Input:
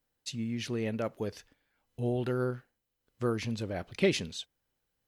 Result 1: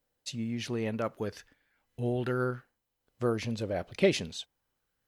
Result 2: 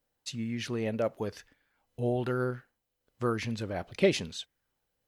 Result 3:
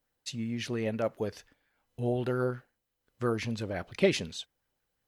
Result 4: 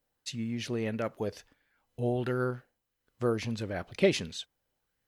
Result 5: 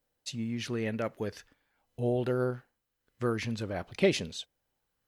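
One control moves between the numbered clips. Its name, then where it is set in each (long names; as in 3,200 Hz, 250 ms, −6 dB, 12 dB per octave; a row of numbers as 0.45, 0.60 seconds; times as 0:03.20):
auto-filter bell, speed: 0.27, 1, 5.7, 1.5, 0.46 Hertz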